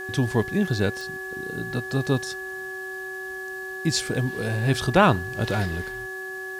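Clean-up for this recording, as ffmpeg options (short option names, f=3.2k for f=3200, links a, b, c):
-af "adeclick=t=4,bandreject=f=377.9:t=h:w=4,bandreject=f=755.8:t=h:w=4,bandreject=f=1.1337k:t=h:w=4,bandreject=f=1.7k:w=30,agate=range=-21dB:threshold=-26dB"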